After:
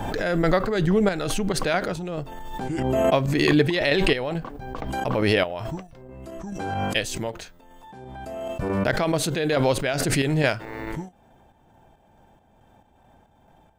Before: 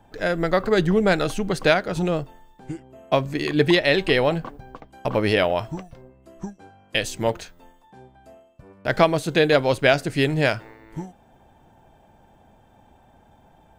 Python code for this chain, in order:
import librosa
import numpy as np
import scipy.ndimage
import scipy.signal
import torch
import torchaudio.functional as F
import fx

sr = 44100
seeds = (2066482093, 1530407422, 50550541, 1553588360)

y = fx.chopper(x, sr, hz=2.3, depth_pct=60, duty_pct=50)
y = fx.pre_swell(y, sr, db_per_s=24.0)
y = y * librosa.db_to_amplitude(-1.5)